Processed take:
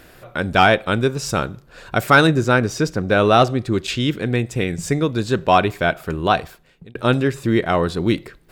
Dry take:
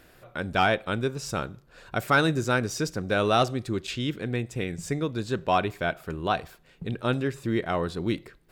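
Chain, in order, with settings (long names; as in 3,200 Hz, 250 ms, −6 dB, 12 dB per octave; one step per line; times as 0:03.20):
0:02.27–0:03.72: high-shelf EQ 4,300 Hz −8.5 dB
0:06.38–0:06.95: fade out
level +9 dB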